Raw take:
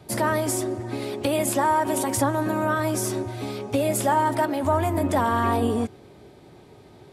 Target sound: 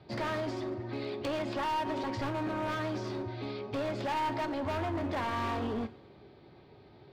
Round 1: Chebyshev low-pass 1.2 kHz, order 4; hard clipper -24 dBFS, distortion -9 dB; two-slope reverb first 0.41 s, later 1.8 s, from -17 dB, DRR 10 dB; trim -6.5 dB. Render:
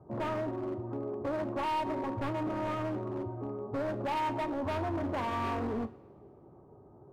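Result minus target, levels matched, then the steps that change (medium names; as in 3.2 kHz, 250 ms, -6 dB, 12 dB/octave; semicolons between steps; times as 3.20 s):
4 kHz band -5.5 dB
change: Chebyshev low-pass 4.6 kHz, order 4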